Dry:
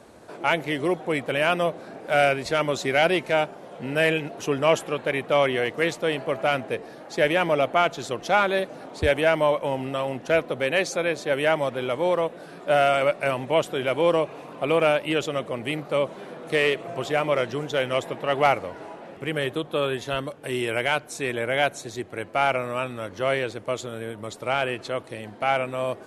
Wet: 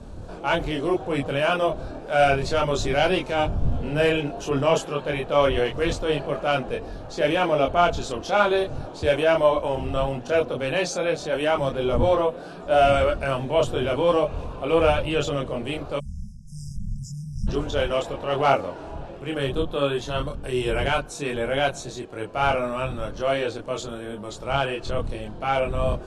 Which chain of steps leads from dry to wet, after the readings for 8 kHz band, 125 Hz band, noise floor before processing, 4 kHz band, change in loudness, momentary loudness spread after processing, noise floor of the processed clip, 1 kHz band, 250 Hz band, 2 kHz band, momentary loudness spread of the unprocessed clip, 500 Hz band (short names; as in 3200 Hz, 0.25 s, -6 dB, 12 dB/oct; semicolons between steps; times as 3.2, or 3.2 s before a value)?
+0.5 dB, +5.0 dB, -43 dBFS, 0.0 dB, +0.5 dB, 13 LU, -38 dBFS, +1.0 dB, +1.5 dB, -3.0 dB, 10 LU, +1.0 dB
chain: wind noise 100 Hz -36 dBFS; LPF 8100 Hz 12 dB/oct; bell 2000 Hz -10.5 dB 0.38 oct; transient shaper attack -4 dB, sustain +1 dB; chorus voices 4, 0.3 Hz, delay 25 ms, depth 4.3 ms; spectral delete 15.99–17.48, 220–4900 Hz; gain +5 dB